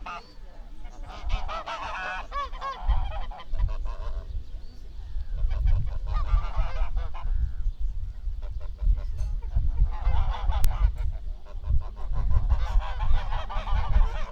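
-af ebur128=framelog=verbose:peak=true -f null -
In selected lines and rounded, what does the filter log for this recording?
Integrated loudness:
  I:         -31.8 LUFS
  Threshold: -42.1 LUFS
Loudness range:
  LRA:         4.0 LU
  Threshold: -52.1 LUFS
  LRA low:   -34.3 LUFS
  LRA high:  -30.3 LUFS
True peak:
  Peak:       -5.3 dBFS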